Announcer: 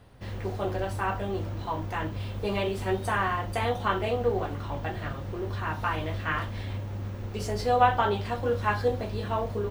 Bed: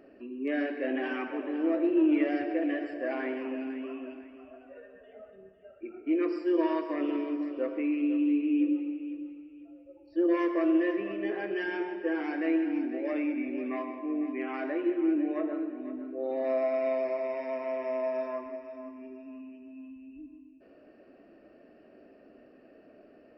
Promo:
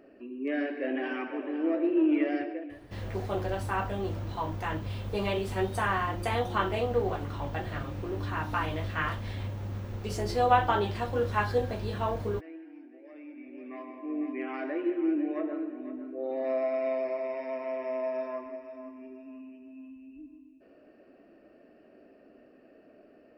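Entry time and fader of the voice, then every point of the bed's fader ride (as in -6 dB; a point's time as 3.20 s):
2.70 s, -1.5 dB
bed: 2.42 s -0.5 dB
2.80 s -18.5 dB
13.09 s -18.5 dB
14.21 s -1 dB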